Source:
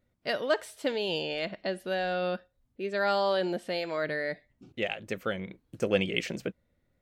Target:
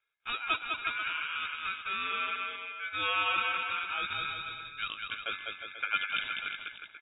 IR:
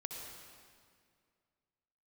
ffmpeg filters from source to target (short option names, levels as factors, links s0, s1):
-filter_complex "[0:a]highpass=f=200:w=0.5412,highpass=f=200:w=1.3066,lowshelf=f=390:g=-5,aeval=exprs='val(0)*sin(2*PI*1900*n/s)':c=same,asplit=2[s0][s1];[s1]aecho=0:1:200|360|488|590.4|672.3:0.631|0.398|0.251|0.158|0.1[s2];[s0][s2]amix=inputs=2:normalize=0,lowpass=f=3200:t=q:w=0.5098,lowpass=f=3200:t=q:w=0.6013,lowpass=f=3200:t=q:w=0.9,lowpass=f=3200:t=q:w=2.563,afreqshift=-3800"